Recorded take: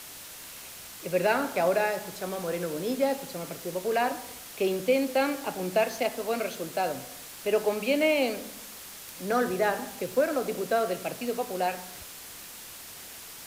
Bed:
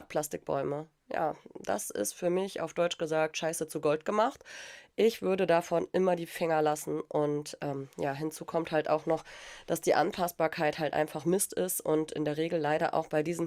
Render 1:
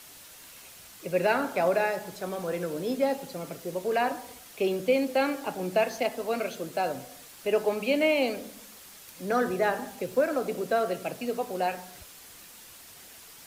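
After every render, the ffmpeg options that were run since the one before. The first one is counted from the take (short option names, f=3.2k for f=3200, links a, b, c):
-af "afftdn=nr=6:nf=-44"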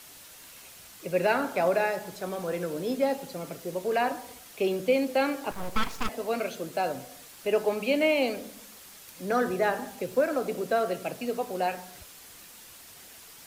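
-filter_complex "[0:a]asettb=1/sr,asplit=3[a][b][c];[a]atrim=end=5.514[d];[b]atrim=start=5.51:end=6.09,asetpts=PTS-STARTPTS,afade=t=in:d=0.004:c=qsin,afade=t=out:st=0.576:d=0.004:c=qsin,aeval=exprs='abs(val(0))':c=same[e];[c]atrim=start=6.086[f];[d][e]acrossfade=d=0.004:c1=hsin:c2=qsin[g];[g][f]acrossfade=d=0.004:c1=qsin:c2=hsin"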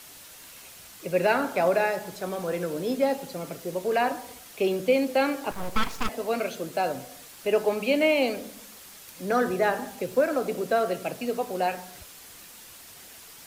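-af "volume=2dB"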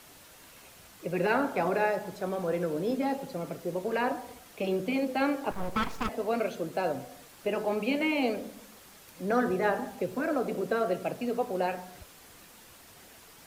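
-af "afftfilt=real='re*lt(hypot(re,im),0.631)':imag='im*lt(hypot(re,im),0.631)':win_size=1024:overlap=0.75,highshelf=f=2.1k:g=-8.5"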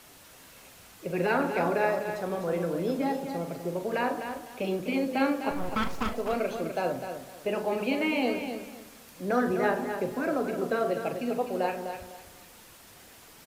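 -filter_complex "[0:a]asplit=2[a][b];[b]adelay=41,volume=-11dB[c];[a][c]amix=inputs=2:normalize=0,aecho=1:1:252|504|756:0.398|0.0995|0.0249"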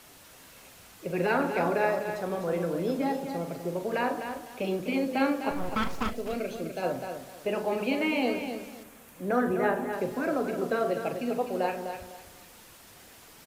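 -filter_complex "[0:a]asettb=1/sr,asplit=3[a][b][c];[a]atrim=end=6.104[d];[b]atrim=start=6.1:end=6.83,asetpts=PTS-STARTPTS,afade=t=in:d=0.004:c=qsin,afade=t=out:st=0.726:d=0.004:c=qsin,equalizer=f=1k:t=o:w=1.4:g=-10.5[e];[c]atrim=start=6.826[f];[d][e]acrossfade=d=0.004:c1=hsin:c2=qsin[g];[g][f]acrossfade=d=0.004:c1=qsin:c2=hsin,asettb=1/sr,asplit=3[h][i][j];[h]atrim=end=8.834[k];[i]atrim=start=8.83:end=9.93,asetpts=PTS-STARTPTS,afade=t=in:d=0.004:c=qsin,afade=t=out:st=1.096:d=0.004:c=qsin,equalizer=f=4.8k:t=o:w=1:g=-8.5[l];[j]atrim=start=9.926[m];[k][l]acrossfade=d=0.004:c1=hsin:c2=qsin[n];[n][m]acrossfade=d=0.004:c1=qsin:c2=hsin"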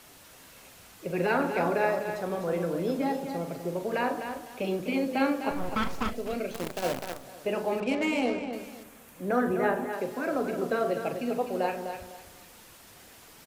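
-filter_complex "[0:a]asplit=3[a][b][c];[a]afade=t=out:st=6.51:d=0.02[d];[b]acrusher=bits=6:dc=4:mix=0:aa=0.000001,afade=t=in:st=6.51:d=0.02,afade=t=out:st=7.23:d=0.02[e];[c]afade=t=in:st=7.23:d=0.02[f];[d][e][f]amix=inputs=3:normalize=0,asettb=1/sr,asplit=3[g][h][i];[g]atrim=end=7.804[j];[h]atrim=start=7.8:end=8.53,asetpts=PTS-STARTPTS,afade=t=in:d=0.004:c=qsin,afade=t=out:st=0.726:d=0.004:c=qsin,adynamicsmooth=sensitivity=6:basefreq=1.4k[k];[i]atrim=start=8.526[l];[j][k]acrossfade=d=0.004:c1=hsin:c2=qsin[m];[m][l]acrossfade=d=0.004:c1=qsin:c2=hsin,asettb=1/sr,asplit=3[n][o][p];[n]atrim=end=9.864[q];[o]atrim=start=9.86:end=10.35,asetpts=PTS-STARTPTS,afade=t=in:d=0.004:c=qsin,afade=t=out:st=0.486:d=0.004:c=qsin,lowshelf=f=170:g=-10.5[r];[p]atrim=start=10.346[s];[q][r]acrossfade=d=0.004:c1=hsin:c2=qsin[t];[t][s]acrossfade=d=0.004:c1=qsin:c2=hsin"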